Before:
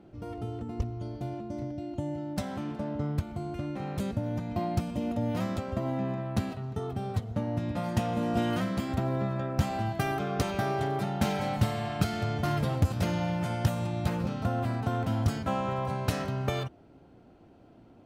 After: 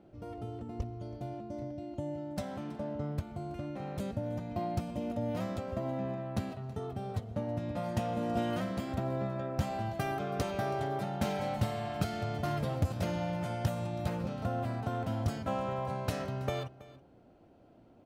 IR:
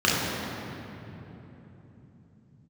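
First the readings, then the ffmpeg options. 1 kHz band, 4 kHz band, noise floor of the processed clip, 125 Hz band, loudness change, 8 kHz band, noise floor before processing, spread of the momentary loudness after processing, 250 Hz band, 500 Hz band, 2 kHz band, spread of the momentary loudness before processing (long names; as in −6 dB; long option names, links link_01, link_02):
−3.5 dB, −5.5 dB, −59 dBFS, −5.5 dB, −4.5 dB, −5.5 dB, −55 dBFS, 7 LU, −5.0 dB, −2.0 dB, −5.5 dB, 7 LU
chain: -filter_complex "[0:a]equalizer=frequency=590:width_type=o:width=0.58:gain=5,asplit=2[link_01][link_02];[link_02]aecho=0:1:325:0.112[link_03];[link_01][link_03]amix=inputs=2:normalize=0,volume=-5.5dB"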